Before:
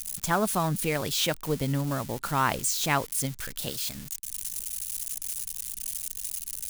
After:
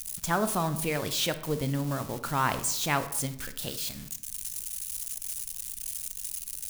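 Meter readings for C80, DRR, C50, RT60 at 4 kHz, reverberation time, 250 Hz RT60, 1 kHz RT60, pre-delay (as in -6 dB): 15.0 dB, 10.0 dB, 12.5 dB, 0.45 s, 0.80 s, 0.95 s, 0.75 s, 23 ms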